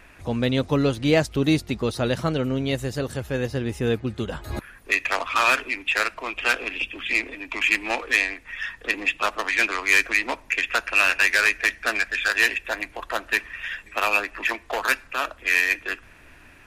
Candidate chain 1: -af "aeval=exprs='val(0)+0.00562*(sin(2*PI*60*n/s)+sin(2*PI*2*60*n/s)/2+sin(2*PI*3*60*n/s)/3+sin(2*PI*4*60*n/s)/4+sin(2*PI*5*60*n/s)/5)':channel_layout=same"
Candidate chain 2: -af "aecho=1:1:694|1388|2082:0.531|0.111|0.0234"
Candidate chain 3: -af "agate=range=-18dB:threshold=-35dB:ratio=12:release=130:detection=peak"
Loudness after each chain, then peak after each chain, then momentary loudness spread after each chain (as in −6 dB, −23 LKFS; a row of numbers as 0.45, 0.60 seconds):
−23.0, −22.0, −23.0 LKFS; −9.0, −5.5, −9.0 dBFS; 11, 8, 11 LU